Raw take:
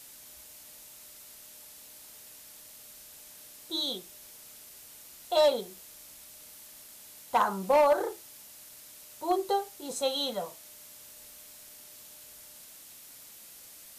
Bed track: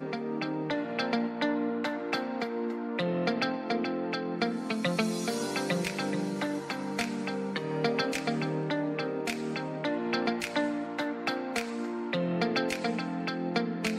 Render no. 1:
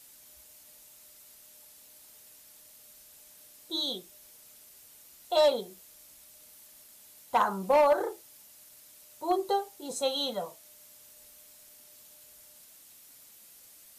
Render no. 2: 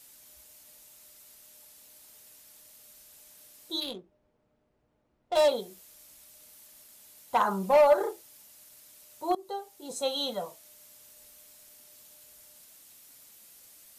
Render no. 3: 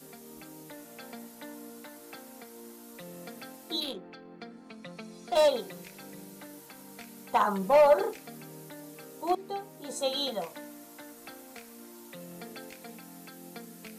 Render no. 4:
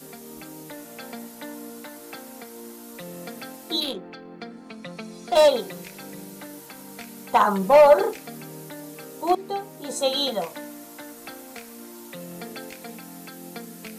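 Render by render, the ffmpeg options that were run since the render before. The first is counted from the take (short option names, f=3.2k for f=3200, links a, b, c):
-af "afftdn=nr=6:nf=-51"
-filter_complex "[0:a]asettb=1/sr,asplit=3[a][b][c];[a]atrim=end=3.804[d];[b]atrim=start=3.8:end=5.48,asetpts=PTS-STARTPTS,afade=t=in:d=0.004:c=qsin,afade=t=out:st=1.676:d=0.004:c=qsin,adynamicsmooth=sensitivity=5:basefreq=720[e];[c]atrim=start=5.476[f];[d][e]acrossfade=d=0.004:c1=hsin:c2=qsin[g];[g][f]acrossfade=d=0.004:c1=qsin:c2=hsin,asettb=1/sr,asplit=3[h][i][j];[h]atrim=end=7.444[k];[i]atrim=start=7.44:end=8.11,asetpts=PTS-STARTPTS,afade=t=in:d=0.004:c=qsin,afade=t=out:st=0.666:d=0.004:c=qsin,aecho=1:1:4.9:0.59,atrim=end_sample=29547[l];[j]atrim=start=8.106[m];[k][l]acrossfade=d=0.004:c1=hsin:c2=qsin[n];[n][m]acrossfade=d=0.004:c1=qsin:c2=hsin,asplit=2[o][p];[o]atrim=end=9.35,asetpts=PTS-STARTPTS,afade=t=out:st=9.346:d=0.004:c=hsin:silence=0.125893[q];[p]atrim=start=9.35,asetpts=PTS-STARTPTS,afade=t=in:d=1:c=qsin:silence=0.125893[r];[q][r]concat=n=2:v=0:a=1"
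-filter_complex "[1:a]volume=-16dB[a];[0:a][a]amix=inputs=2:normalize=0"
-af "volume=7dB"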